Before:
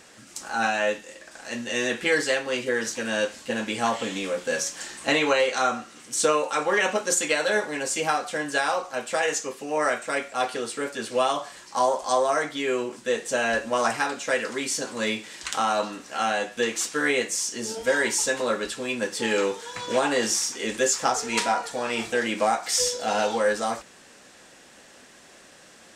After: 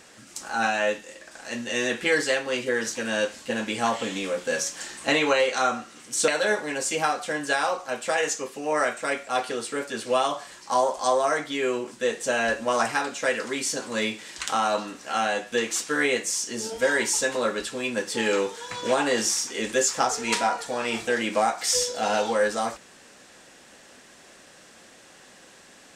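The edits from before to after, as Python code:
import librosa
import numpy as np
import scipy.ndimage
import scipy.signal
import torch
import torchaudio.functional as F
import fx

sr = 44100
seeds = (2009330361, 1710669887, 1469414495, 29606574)

y = fx.edit(x, sr, fx.cut(start_s=6.28, length_s=1.05), tone=tone)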